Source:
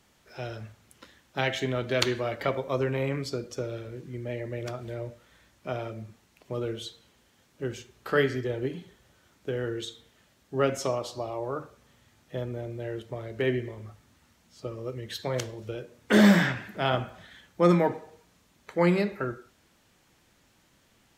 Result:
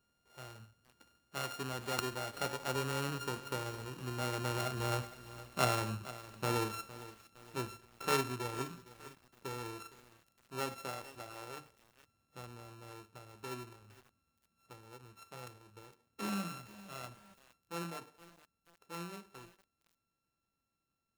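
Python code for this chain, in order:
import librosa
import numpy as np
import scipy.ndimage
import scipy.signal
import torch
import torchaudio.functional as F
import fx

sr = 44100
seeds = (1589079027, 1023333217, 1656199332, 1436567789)

y = np.r_[np.sort(x[:len(x) // 32 * 32].reshape(-1, 32), axis=1).ravel(), x[len(x) // 32 * 32:]]
y = fx.doppler_pass(y, sr, speed_mps=6, closest_m=5.0, pass_at_s=5.49)
y = fx.echo_crushed(y, sr, ms=461, feedback_pct=55, bits=8, wet_db=-15)
y = F.gain(torch.from_numpy(y), 2.0).numpy()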